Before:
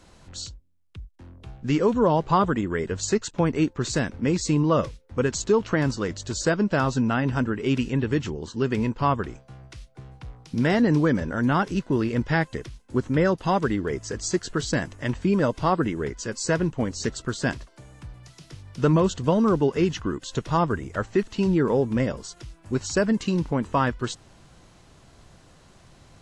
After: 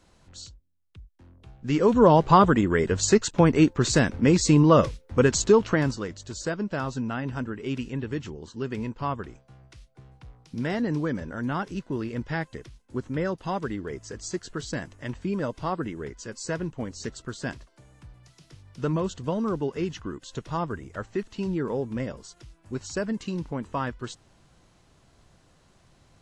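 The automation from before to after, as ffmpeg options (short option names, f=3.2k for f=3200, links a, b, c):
-af "volume=4dB,afade=t=in:st=1.58:d=0.48:silence=0.281838,afade=t=out:st=5.4:d=0.71:silence=0.281838"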